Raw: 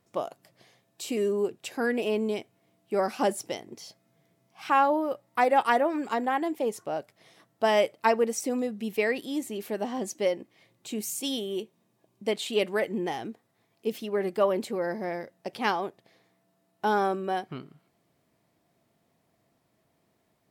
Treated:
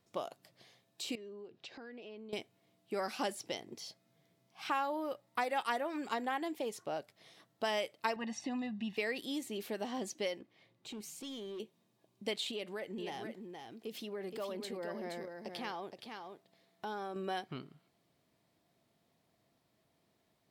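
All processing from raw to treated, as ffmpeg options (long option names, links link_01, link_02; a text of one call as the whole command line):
ffmpeg -i in.wav -filter_complex "[0:a]asettb=1/sr,asplit=3[link_01][link_02][link_03];[link_01]atrim=end=1.154[link_04];[link_02]atrim=start=1.15:end=2.33,asetpts=PTS-STARTPTS,afade=type=in:duration=0.004:curve=qsin,afade=type=out:start_time=1.176:duration=0.004:curve=qsin,lowpass=frequency=5200:width=0.5412,lowpass=frequency=5200:width=1.3066,acompressor=threshold=-45dB:ratio=4:attack=3.2:release=140:knee=1:detection=peak[link_05];[link_03]atrim=start=2.326[link_06];[link_04][link_05]acrossfade=duration=0.004:curve1=hsin:curve2=qsin[link_07];[link_07][link_06]acrossfade=duration=0.004:curve1=qsin:curve2=hsin,asettb=1/sr,asplit=3[link_08][link_09][link_10];[link_08]atrim=end=8.164[link_11];[link_09]atrim=start=8.16:end=8.97,asetpts=PTS-STARTPTS,afade=type=in:duration=0.004:curve=qsin,afade=type=out:start_time=0.806:duration=0.004:curve=qsin,lowpass=3400,aecho=1:1:1.1:0.85,atrim=end_sample=35721[link_12];[link_10]atrim=start=8.966[link_13];[link_11][link_12]acrossfade=duration=0.004:curve1=hsin:curve2=qsin[link_14];[link_14][link_13]acrossfade=duration=0.004:curve1=qsin:curve2=hsin,asettb=1/sr,asplit=3[link_15][link_16][link_17];[link_15]atrim=end=10.394[link_18];[link_16]atrim=start=10.39:end=11.6,asetpts=PTS-STARTPTS,afade=type=in:duration=0.004:curve=qsin,afade=type=out:start_time=1.206:duration=0.004:curve=qsin,highshelf=frequency=4300:gain=-11,acompressor=threshold=-37dB:ratio=3:attack=3.2:release=140:knee=1:detection=peak,asoftclip=type=hard:threshold=-35.5dB[link_19];[link_17]atrim=start=11.596[link_20];[link_18][link_19]acrossfade=duration=0.004:curve1=hsin:curve2=qsin[link_21];[link_21][link_20]acrossfade=duration=0.004:curve1=qsin:curve2=hsin,asettb=1/sr,asplit=3[link_22][link_23][link_24];[link_22]atrim=end=12.514[link_25];[link_23]atrim=start=12.51:end=17.16,asetpts=PTS-STARTPTS,afade=type=in:duration=0.004:curve=qsin,afade=type=out:start_time=4.646:duration=0.004:curve=qsin,acompressor=threshold=-37dB:ratio=2.5:attack=3.2:release=140:knee=1:detection=peak,aecho=1:1:471:0.501,atrim=end_sample=205065[link_26];[link_24]atrim=start=17.156[link_27];[link_25][link_26]acrossfade=duration=0.004:curve1=hsin:curve2=qsin[link_28];[link_28][link_27]acrossfade=duration=0.004:curve1=qsin:curve2=hsin,equalizer=frequency=3900:width_type=o:width=1:gain=5.5,acrossover=split=1200|5400[link_29][link_30][link_31];[link_29]acompressor=threshold=-31dB:ratio=4[link_32];[link_30]acompressor=threshold=-32dB:ratio=4[link_33];[link_31]acompressor=threshold=-44dB:ratio=4[link_34];[link_32][link_33][link_34]amix=inputs=3:normalize=0,volume=-5dB" out.wav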